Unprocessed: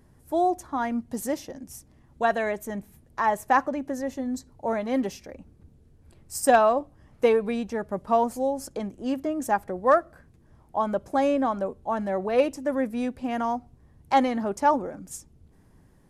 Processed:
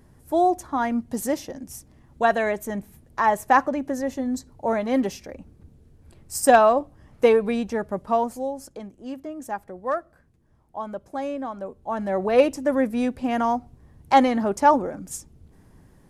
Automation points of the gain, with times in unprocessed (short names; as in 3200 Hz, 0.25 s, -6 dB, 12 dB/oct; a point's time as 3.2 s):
7.77 s +3.5 dB
8.89 s -6.5 dB
11.53 s -6.5 dB
12.25 s +4.5 dB